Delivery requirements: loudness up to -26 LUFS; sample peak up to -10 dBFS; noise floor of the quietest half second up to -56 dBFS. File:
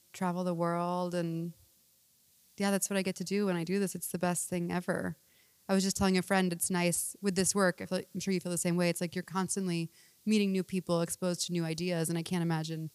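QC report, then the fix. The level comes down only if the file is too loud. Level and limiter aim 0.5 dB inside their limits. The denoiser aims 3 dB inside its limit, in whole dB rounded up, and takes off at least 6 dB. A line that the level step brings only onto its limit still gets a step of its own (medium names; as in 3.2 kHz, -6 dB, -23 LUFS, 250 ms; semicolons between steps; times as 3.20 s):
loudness -32.0 LUFS: pass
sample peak -12.5 dBFS: pass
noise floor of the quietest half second -67 dBFS: pass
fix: none needed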